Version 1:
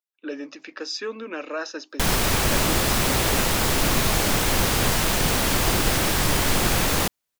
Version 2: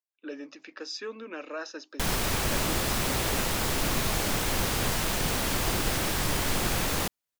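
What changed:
speech -6.5 dB; background -6.5 dB

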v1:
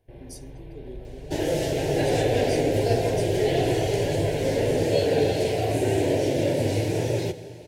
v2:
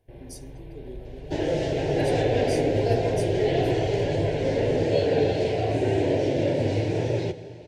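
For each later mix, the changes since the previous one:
second sound: add distance through air 120 m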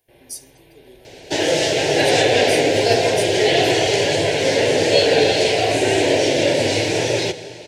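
second sound +11.0 dB; master: add tilt EQ +4 dB/octave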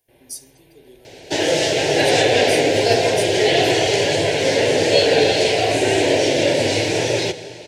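first sound -4.0 dB

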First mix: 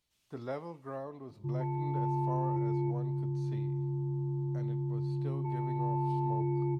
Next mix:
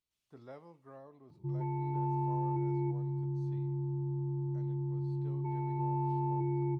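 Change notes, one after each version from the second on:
speech -11.5 dB; background: send off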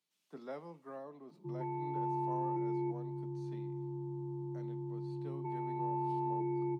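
speech +5.5 dB; master: add steep high-pass 150 Hz 72 dB/octave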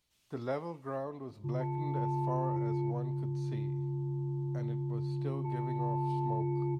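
speech +9.0 dB; master: remove steep high-pass 150 Hz 72 dB/octave

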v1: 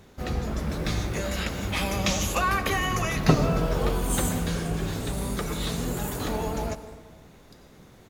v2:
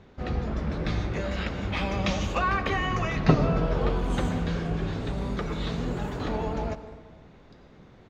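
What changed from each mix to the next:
master: add distance through air 190 m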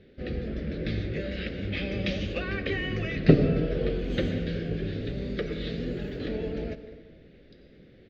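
first sound -5.0 dB; master: add FFT filter 110 Hz 0 dB, 360 Hz +6 dB, 540 Hz +5 dB, 970 Hz -21 dB, 1.7 kHz +3 dB, 3.1 kHz +4 dB, 4.8 kHz +2 dB, 9.3 kHz -27 dB, 14 kHz -7 dB

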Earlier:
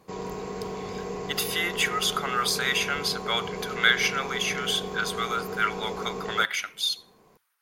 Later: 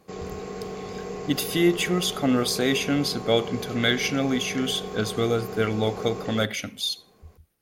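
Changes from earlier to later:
speech: remove resonant high-pass 1.3 kHz, resonance Q 2.4; master: add band-stop 960 Hz, Q 6.3

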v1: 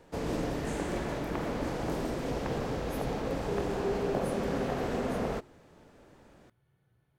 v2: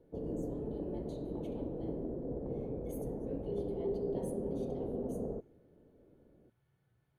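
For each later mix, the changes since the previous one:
speech -4.0 dB; background: add four-pole ladder low-pass 580 Hz, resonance 30%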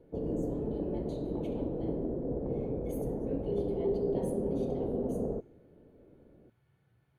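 speech: send +6.0 dB; background +5.0 dB

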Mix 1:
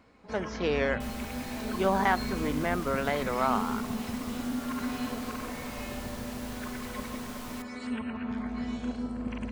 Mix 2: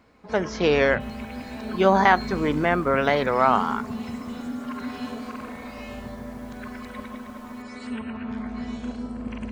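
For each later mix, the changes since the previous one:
speech +8.5 dB; first sound: send +11.0 dB; second sound -11.5 dB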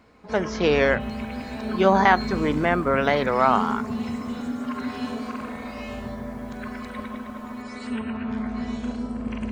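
first sound: send +7.0 dB; second sound: send off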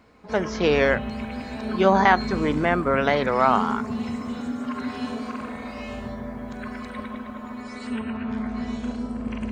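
second sound -8.0 dB

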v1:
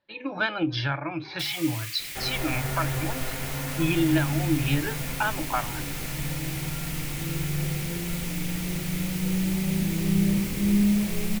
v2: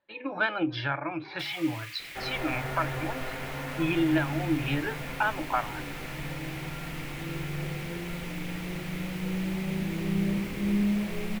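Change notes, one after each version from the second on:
master: add tone controls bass -7 dB, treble -14 dB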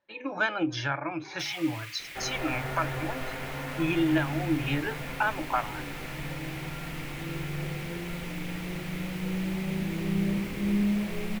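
speech: remove steep low-pass 4.7 kHz 48 dB/octave

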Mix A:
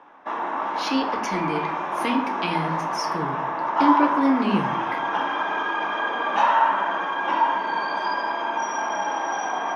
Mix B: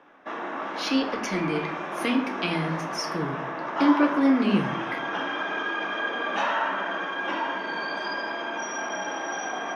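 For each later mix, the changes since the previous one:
background: add peaking EQ 930 Hz -11.5 dB 0.56 oct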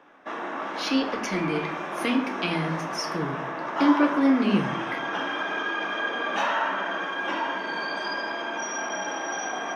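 background: remove distance through air 55 m

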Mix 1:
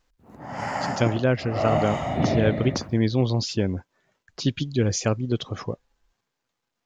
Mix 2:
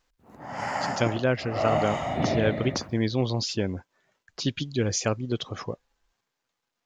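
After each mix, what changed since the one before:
master: add bass shelf 380 Hz -5.5 dB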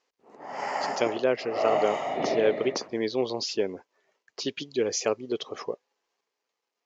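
master: add cabinet simulation 350–6800 Hz, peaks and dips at 420 Hz +8 dB, 1.5 kHz -6 dB, 3.6 kHz -4 dB

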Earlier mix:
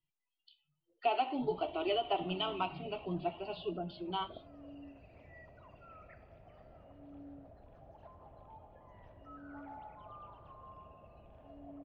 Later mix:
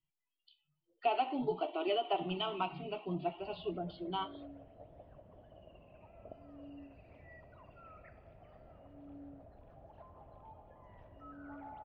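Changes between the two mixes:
background: entry +1.95 s; master: add distance through air 91 m

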